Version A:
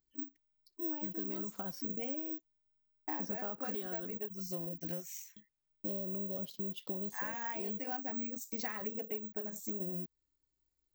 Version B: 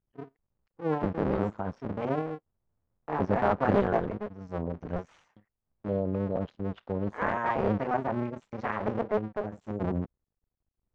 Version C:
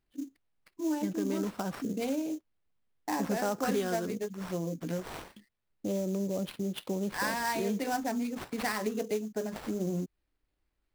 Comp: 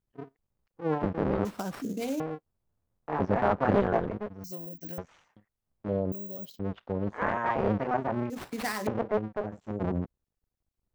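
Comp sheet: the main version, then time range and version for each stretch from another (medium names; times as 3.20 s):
B
1.45–2.20 s: from C
4.44–4.98 s: from A
6.12–6.59 s: from A
8.30–8.87 s: from C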